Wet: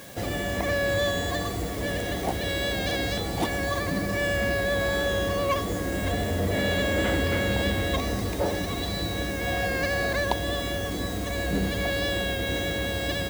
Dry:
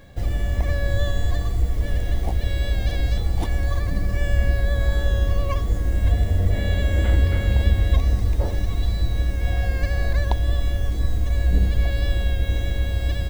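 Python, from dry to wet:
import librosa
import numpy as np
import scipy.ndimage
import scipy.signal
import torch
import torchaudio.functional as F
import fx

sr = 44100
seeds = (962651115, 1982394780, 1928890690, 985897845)

p1 = scipy.signal.sosfilt(scipy.signal.butter(2, 200.0, 'highpass', fs=sr, output='sos'), x)
p2 = np.clip(p1, -10.0 ** (-29.0 / 20.0), 10.0 ** (-29.0 / 20.0))
p3 = p1 + (p2 * 10.0 ** (1.0 / 20.0))
y = fx.quant_dither(p3, sr, seeds[0], bits=8, dither='triangular')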